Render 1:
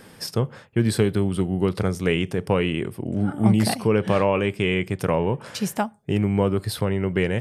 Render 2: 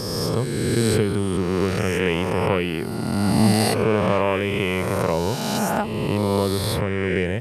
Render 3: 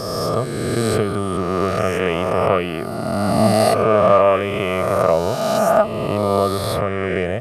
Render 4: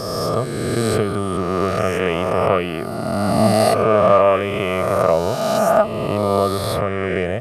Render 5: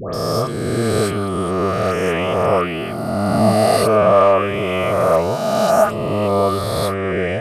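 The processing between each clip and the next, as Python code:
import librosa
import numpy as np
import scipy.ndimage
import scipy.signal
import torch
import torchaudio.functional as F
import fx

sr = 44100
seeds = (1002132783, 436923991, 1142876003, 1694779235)

y1 = fx.spec_swells(x, sr, rise_s=2.34)
y1 = y1 * librosa.db_to_amplitude(-2.5)
y2 = fx.small_body(y1, sr, hz=(650.0, 1200.0), ring_ms=35, db=17)
y2 = y2 * librosa.db_to_amplitude(-1.0)
y3 = y2
y4 = fx.dispersion(y3, sr, late='highs', ms=139.0, hz=1400.0)
y4 = y4 * librosa.db_to_amplitude(1.0)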